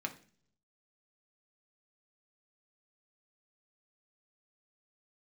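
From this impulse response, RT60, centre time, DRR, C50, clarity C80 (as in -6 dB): 0.45 s, 7 ms, 3.0 dB, 14.0 dB, 18.5 dB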